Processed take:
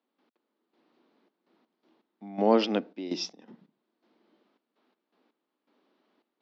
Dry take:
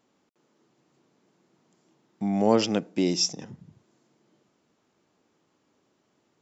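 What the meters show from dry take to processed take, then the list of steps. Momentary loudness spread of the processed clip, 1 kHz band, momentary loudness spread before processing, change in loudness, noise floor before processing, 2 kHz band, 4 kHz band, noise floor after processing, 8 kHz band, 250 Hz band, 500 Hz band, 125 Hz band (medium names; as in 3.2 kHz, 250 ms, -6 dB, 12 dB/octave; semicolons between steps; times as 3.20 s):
14 LU, -0.5 dB, 9 LU, -3.0 dB, -72 dBFS, -2.0 dB, -6.5 dB, -84 dBFS, no reading, -4.5 dB, -1.5 dB, -10.0 dB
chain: trance gate ".x..xxx.x" 82 bpm -12 dB; elliptic band-pass 230–4200 Hz, stop band 40 dB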